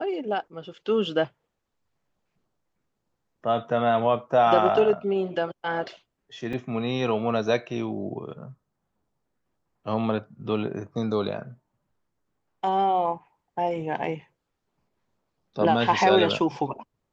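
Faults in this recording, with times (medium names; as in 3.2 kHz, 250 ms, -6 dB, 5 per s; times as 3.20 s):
6.53 s: dropout 3.5 ms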